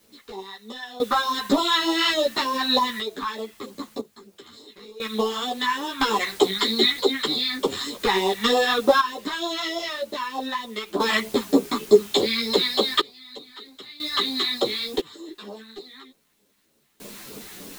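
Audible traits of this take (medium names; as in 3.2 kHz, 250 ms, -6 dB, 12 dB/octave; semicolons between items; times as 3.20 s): phasing stages 2, 3.3 Hz, lowest notch 470–1700 Hz; a quantiser's noise floor 8-bit, dither triangular; random-step tremolo 1 Hz, depth 95%; a shimmering, thickened sound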